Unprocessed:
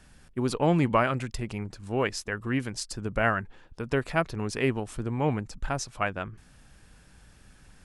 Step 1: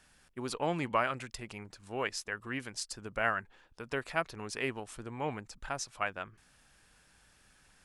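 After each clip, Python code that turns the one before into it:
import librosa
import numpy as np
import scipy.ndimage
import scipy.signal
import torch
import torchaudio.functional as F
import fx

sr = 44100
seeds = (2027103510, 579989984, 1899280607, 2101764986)

y = fx.low_shelf(x, sr, hz=400.0, db=-12.0)
y = F.gain(torch.from_numpy(y), -3.5).numpy()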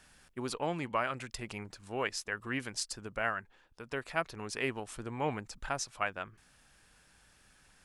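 y = fx.rider(x, sr, range_db=3, speed_s=0.5)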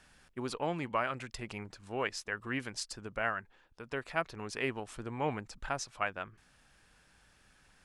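y = fx.high_shelf(x, sr, hz=7400.0, db=-8.0)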